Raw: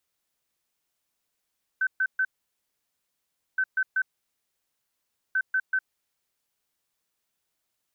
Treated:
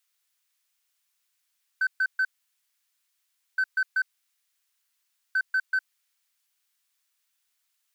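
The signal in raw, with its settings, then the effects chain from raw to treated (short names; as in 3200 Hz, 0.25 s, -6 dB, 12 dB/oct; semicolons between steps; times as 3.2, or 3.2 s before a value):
beep pattern sine 1530 Hz, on 0.06 s, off 0.13 s, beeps 3, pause 1.33 s, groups 3, -21 dBFS
HPF 1400 Hz 12 dB/oct; in parallel at -4 dB: overloaded stage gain 29 dB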